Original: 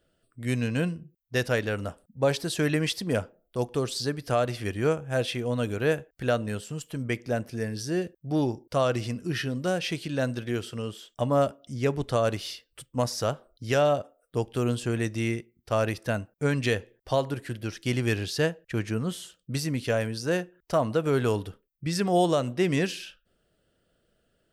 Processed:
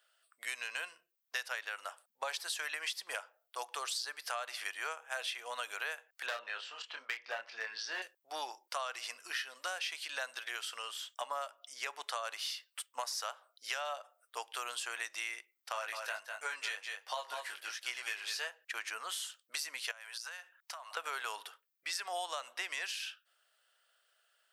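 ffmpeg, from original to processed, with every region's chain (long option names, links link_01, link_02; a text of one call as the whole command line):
ffmpeg -i in.wav -filter_complex "[0:a]asettb=1/sr,asplit=3[link_01][link_02][link_03];[link_01]atrim=end=6.264[link_04];[link_02]atrim=start=6.26:end=8.02,asetpts=PTS-STARTPTS,afade=type=in:duration=0.004:curve=qsin,afade=type=out:start_time=1.756:duration=0.004:curve=qsin,lowpass=frequency=4400:width=0.5412,lowpass=frequency=4400:width=1.3066,volume=22dB,asoftclip=hard,volume=-22dB,asplit=2[link_05][link_06];[link_06]adelay=27,volume=-5dB[link_07];[link_05][link_07]amix=inputs=2:normalize=0,atrim=end_sample=77616[link_08];[link_03]atrim=start=8.016[link_09];[link_04][link_08]acrossfade=duration=0.004:curve1=hsin:curve2=qsin[link_10];[link_10][link_09]acrossfade=duration=0.004:curve1=qsin:curve2=hsin,asettb=1/sr,asplit=3[link_11][link_12][link_13];[link_11]atrim=end=15.724[link_14];[link_12]atrim=start=15.72:end=18.47,asetpts=PTS-STARTPTS,afade=type=in:duration=0.004:curve=qsin,afade=type=out:start_time=2.746:duration=0.004:curve=qsin,flanger=delay=16:depth=4.4:speed=1.4,aecho=1:1:199:0.355,atrim=end_sample=121275[link_15];[link_13]atrim=start=18.466[link_16];[link_14][link_15]acrossfade=duration=0.004:curve1=hsin:curve2=qsin[link_17];[link_17][link_16]acrossfade=duration=0.004:curve1=qsin:curve2=hsin,asettb=1/sr,asplit=3[link_18][link_19][link_20];[link_18]atrim=end=19.914[link_21];[link_19]atrim=start=19.91:end=20.97,asetpts=PTS-STARTPTS,afade=type=in:duration=0.004:curve=qsin,afade=type=out:start_time=1.056:duration=0.004:curve=qsin,highpass=740,acompressor=threshold=-41dB:ratio=20:attack=3.2:release=140:knee=1:detection=peak[link_22];[link_20]atrim=start=20.966[link_23];[link_21][link_22]acrossfade=duration=0.004:curve1=hsin:curve2=qsin[link_24];[link_24][link_23]acrossfade=duration=0.004:curve1=qsin:curve2=hsin,highpass=frequency=880:width=0.5412,highpass=frequency=880:width=1.3066,acompressor=threshold=-39dB:ratio=6,volume=3.5dB" out.wav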